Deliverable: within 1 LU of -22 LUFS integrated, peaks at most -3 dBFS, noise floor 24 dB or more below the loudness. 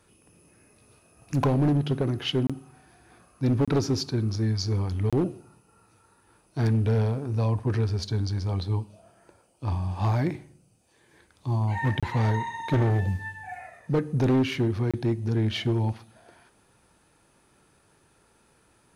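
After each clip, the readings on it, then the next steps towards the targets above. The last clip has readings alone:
clipped samples 1.7%; clipping level -18.0 dBFS; dropouts 5; longest dropout 26 ms; loudness -26.5 LUFS; peak level -18.0 dBFS; loudness target -22.0 LUFS
-> clip repair -18 dBFS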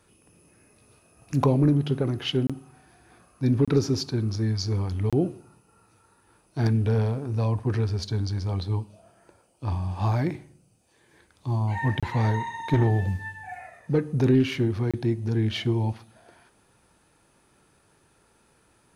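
clipped samples 0.0%; dropouts 5; longest dropout 26 ms
-> interpolate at 2.47/3.65/5.10/12.00/14.91 s, 26 ms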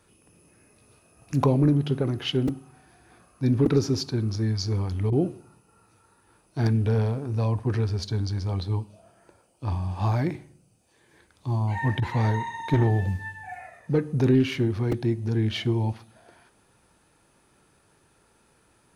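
dropouts 0; loudness -25.5 LUFS; peak level -9.0 dBFS; loudness target -22.0 LUFS
-> trim +3.5 dB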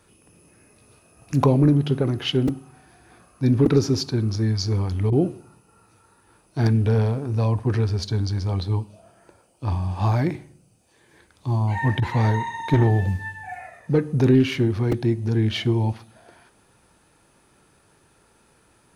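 loudness -22.0 LUFS; peak level -5.5 dBFS; noise floor -60 dBFS

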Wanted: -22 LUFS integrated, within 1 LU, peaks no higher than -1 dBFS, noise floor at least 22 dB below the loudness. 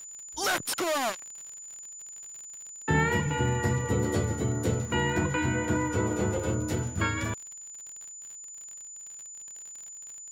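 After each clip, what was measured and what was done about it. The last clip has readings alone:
tick rate 51 per s; steady tone 7 kHz; tone level -41 dBFS; loudness -28.5 LUFS; peak level -13.5 dBFS; loudness target -22.0 LUFS
-> de-click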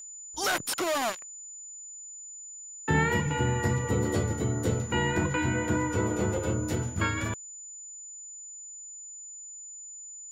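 tick rate 0.097 per s; steady tone 7 kHz; tone level -41 dBFS
-> band-stop 7 kHz, Q 30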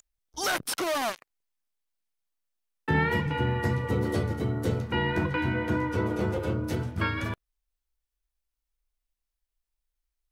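steady tone not found; loudness -28.5 LUFS; peak level -13.0 dBFS; loudness target -22.0 LUFS
-> trim +6.5 dB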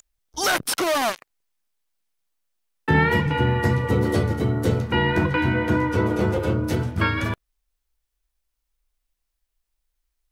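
loudness -22.0 LUFS; peak level -6.5 dBFS; noise floor -79 dBFS

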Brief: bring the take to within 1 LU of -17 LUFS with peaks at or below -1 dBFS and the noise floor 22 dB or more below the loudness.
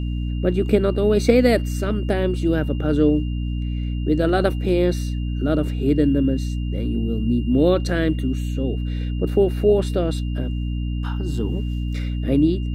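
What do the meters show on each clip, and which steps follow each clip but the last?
hum 60 Hz; highest harmonic 300 Hz; hum level -22 dBFS; steady tone 2.8 kHz; tone level -44 dBFS; loudness -21.5 LUFS; peak level -2.5 dBFS; loudness target -17.0 LUFS
-> de-hum 60 Hz, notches 5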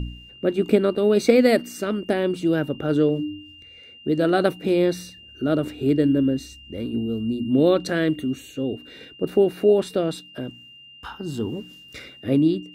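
hum not found; steady tone 2.8 kHz; tone level -44 dBFS
-> band-stop 2.8 kHz, Q 30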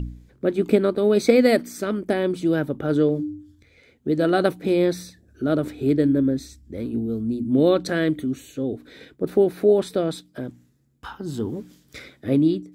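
steady tone not found; loudness -22.0 LUFS; peak level -3.0 dBFS; loudness target -17.0 LUFS
-> trim +5 dB; peak limiter -1 dBFS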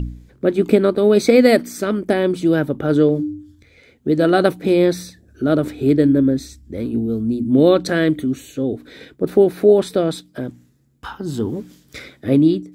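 loudness -17.5 LUFS; peak level -1.0 dBFS; noise floor -54 dBFS

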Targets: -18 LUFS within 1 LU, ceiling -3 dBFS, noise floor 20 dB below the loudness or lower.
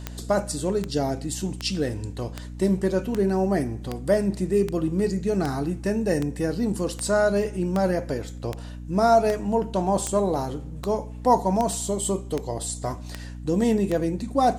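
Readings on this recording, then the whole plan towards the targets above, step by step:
clicks found 19; hum 60 Hz; highest harmonic 300 Hz; hum level -35 dBFS; loudness -25.0 LUFS; peak level -6.5 dBFS; loudness target -18.0 LUFS
-> de-click; hum notches 60/120/180/240/300 Hz; trim +7 dB; peak limiter -3 dBFS

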